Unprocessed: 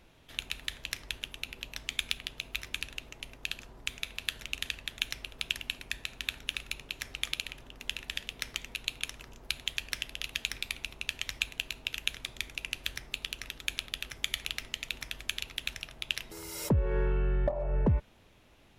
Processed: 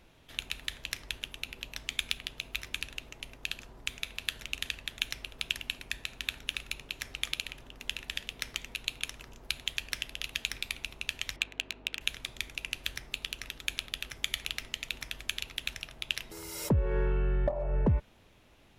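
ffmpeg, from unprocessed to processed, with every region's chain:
ffmpeg -i in.wav -filter_complex "[0:a]asettb=1/sr,asplit=3[link_01][link_02][link_03];[link_01]atrim=end=11.364[link_04];[link_02]atrim=start=11.36:end=12.01,asetpts=PTS-STARTPTS,afade=type=in:duration=0.004:curve=qsin,afade=type=out:start_time=0.646:duration=0.004:curve=qsin,lowshelf=frequency=190:width_type=q:width=1.5:gain=-13,adynamicsmooth=sensitivity=5:basefreq=2300,aeval=exprs='val(0)+0.00158*(sin(2*PI*50*n/s)+sin(2*PI*2*50*n/s)/2+sin(2*PI*3*50*n/s)/3+sin(2*PI*4*50*n/s)/4+sin(2*PI*5*50*n/s)/5)':channel_layout=same[link_05];[link_03]atrim=start=12.006[link_06];[link_04][link_05]acrossfade=duration=0.004:curve1=hsin:curve2=qsin[link_07];[link_07][link_06]acrossfade=duration=0.004:curve1=qsin:curve2=hsin" out.wav

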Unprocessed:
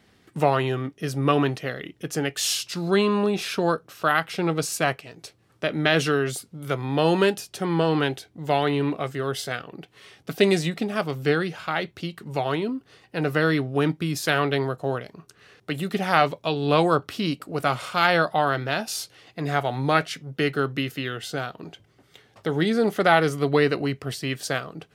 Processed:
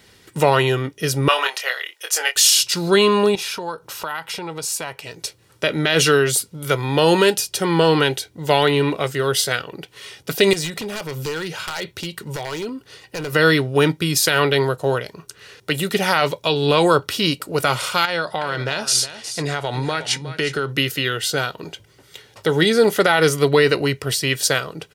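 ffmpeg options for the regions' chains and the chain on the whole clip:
ffmpeg -i in.wav -filter_complex "[0:a]asettb=1/sr,asplit=3[link_01][link_02][link_03];[link_01]atrim=end=1.284[link_04];[link_02]atrim=start=1.28:end=2.36,asetpts=PTS-STARTPTS,afade=type=in:duration=0.004:curve=qsin,afade=type=out:start_time=1.076:duration=0.004:curve=qsin,highpass=frequency=660:width=0.5412,highpass=frequency=660:width=1.3066,asplit=2[link_05][link_06];[link_06]adelay=24,volume=-5dB[link_07];[link_05][link_07]amix=inputs=2:normalize=0,atrim=end_sample=47628[link_08];[link_03]atrim=start=2.356[link_09];[link_04][link_08]acrossfade=duration=0.004:curve1=hsin:curve2=qsin[link_10];[link_10][link_09]acrossfade=duration=0.004:curve1=qsin:curve2=hsin,asettb=1/sr,asplit=3[link_11][link_12][link_13];[link_11]atrim=end=3.354[link_14];[link_12]atrim=start=3.35:end=5.04,asetpts=PTS-STARTPTS,afade=type=in:duration=0.004:curve=qsin,afade=type=out:start_time=1.686:duration=0.004:curve=qsin,acompressor=threshold=-38dB:ratio=3:attack=3.2:release=140:knee=1:detection=peak,equalizer=frequency=900:width_type=o:width=0.46:gain=9.5[link_15];[link_13]atrim=start=5.036[link_16];[link_14][link_15]acrossfade=duration=0.004:curve1=hsin:curve2=qsin[link_17];[link_17][link_16]acrossfade=duration=0.004:curve1=qsin:curve2=hsin,asettb=1/sr,asplit=3[link_18][link_19][link_20];[link_18]atrim=end=10.534[link_21];[link_19]atrim=start=10.53:end=13.33,asetpts=PTS-STARTPTS,afade=type=in:duration=0.004:curve=qsin,afade=type=out:start_time=2.796:duration=0.004:curve=qsin,acompressor=threshold=-29dB:ratio=4:attack=3.2:release=140:knee=1:detection=peak,aeval=exprs='0.0473*(abs(mod(val(0)/0.0473+3,4)-2)-1)':channel_layout=same[link_22];[link_20]atrim=start=13.326[link_23];[link_21][link_22]acrossfade=duration=0.004:curve1=hsin:curve2=qsin[link_24];[link_24][link_23]acrossfade=duration=0.004:curve1=qsin:curve2=hsin,asettb=1/sr,asplit=3[link_25][link_26][link_27];[link_25]atrim=end=18.054[link_28];[link_26]atrim=start=18.05:end=20.69,asetpts=PTS-STARTPTS,afade=type=in:duration=0.004:curve=qsin,afade=type=out:start_time=2.636:duration=0.004:curve=qsin,lowpass=frequency=10000:width=0.5412,lowpass=frequency=10000:width=1.3066,acompressor=threshold=-24dB:ratio=10:attack=3.2:release=140:knee=1:detection=peak,aecho=1:1:363:0.237,atrim=end_sample=116424[link_29];[link_27]atrim=start=20.686[link_30];[link_28][link_29]acrossfade=duration=0.004:curve1=hsin:curve2=qsin[link_31];[link_31][link_30]acrossfade=duration=0.004:curve1=qsin:curve2=hsin,highshelf=frequency=2800:gain=9.5,aecho=1:1:2.1:0.37,alimiter=level_in=8dB:limit=-1dB:release=50:level=0:latency=1,volume=-2.5dB" out.wav

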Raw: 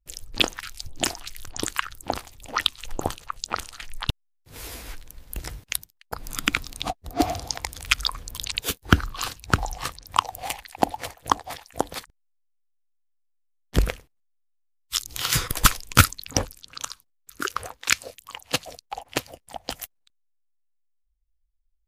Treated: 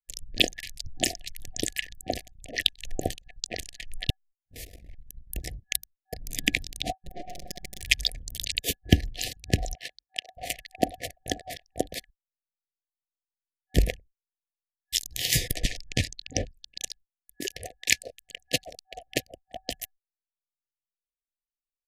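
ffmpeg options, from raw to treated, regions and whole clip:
ffmpeg -i in.wav -filter_complex "[0:a]asettb=1/sr,asplit=3[link_01][link_02][link_03];[link_01]atrim=end=4.644[link_04];[link_02]atrim=start=4.64:end=5.06,asetpts=PTS-STARTPTS,afade=type=in:duration=0.004:curve=qsin,afade=type=out:start_time=0.416:duration=0.004:curve=qsin,highshelf=frequency=3800:gain=-3,aeval=exprs='(tanh(70.8*val(0)+0.65)-tanh(0.65))/70.8':channel_layout=same[link_05];[link_03]atrim=start=5.056[link_06];[link_04][link_05]acrossfade=duration=0.004:curve1=hsin:curve2=qsin[link_07];[link_07][link_06]acrossfade=duration=0.004:curve1=qsin:curve2=hsin,asettb=1/sr,asplit=3[link_08][link_09][link_10];[link_08]atrim=end=6.924[link_11];[link_09]atrim=start=6.92:end=7.82,asetpts=PTS-STARTPTS,afade=type=in:duration=0.004:curve=qsin,afade=type=out:start_time=0.896:duration=0.004:curve=qsin,aeval=exprs='max(val(0),0)':channel_layout=same,acompressor=threshold=-33dB:ratio=12:attack=3.2:release=140:knee=1:detection=peak,aecho=1:1:5.4:0.99,atrim=end_sample=39690[link_12];[link_10]atrim=start=7.816[link_13];[link_11][link_12]acrossfade=duration=0.004:curve1=hsin:curve2=qsin[link_14];[link_14][link_13]acrossfade=duration=0.004:curve1=qsin:curve2=hsin,asettb=1/sr,asplit=3[link_15][link_16][link_17];[link_15]atrim=end=9.754[link_18];[link_16]atrim=start=9.75:end=10.37,asetpts=PTS-STARTPTS,afade=type=in:duration=0.004:curve=qsin,afade=type=out:start_time=0.616:duration=0.004:curve=qsin,acrossover=split=9200[link_19][link_20];[link_20]acompressor=threshold=-54dB:ratio=4:attack=1:release=60[link_21];[link_19][link_21]amix=inputs=2:normalize=0,highpass=frequency=1500:poles=1,equalizer=frequency=7300:width=1.1:gain=-9.5[link_22];[link_17]atrim=start=10.366[link_23];[link_18][link_22]acrossfade=duration=0.004:curve1=hsin:curve2=qsin[link_24];[link_24][link_23]acrossfade=duration=0.004:curve1=qsin:curve2=hsin,asettb=1/sr,asplit=3[link_25][link_26][link_27];[link_25]atrim=end=15.544[link_28];[link_26]atrim=start=15.54:end=16.54,asetpts=PTS-STARTPTS,afade=type=in:duration=0.004:curve=qsin,afade=type=out:start_time=0.996:duration=0.004:curve=qsin,acompressor=threshold=-16dB:ratio=6:attack=3.2:release=140:knee=1:detection=peak,lowpass=5700[link_29];[link_27]atrim=start=16.536[link_30];[link_28][link_29]acrossfade=duration=0.004:curve1=hsin:curve2=qsin[link_31];[link_31][link_30]acrossfade=duration=0.004:curve1=qsin:curve2=hsin,agate=range=-29dB:threshold=-48dB:ratio=16:detection=peak,anlmdn=0.398,afftfilt=real='re*(1-between(b*sr/4096,760,1700))':imag='im*(1-between(b*sr/4096,760,1700))':win_size=4096:overlap=0.75,volume=-1dB" out.wav

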